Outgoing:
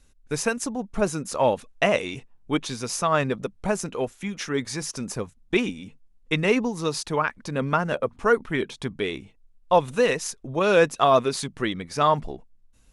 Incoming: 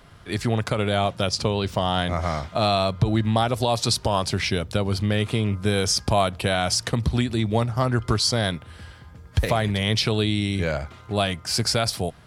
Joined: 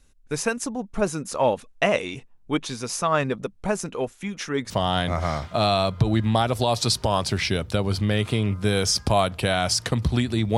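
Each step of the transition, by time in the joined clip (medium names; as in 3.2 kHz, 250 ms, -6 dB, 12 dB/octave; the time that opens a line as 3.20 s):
outgoing
4.70 s: go over to incoming from 1.71 s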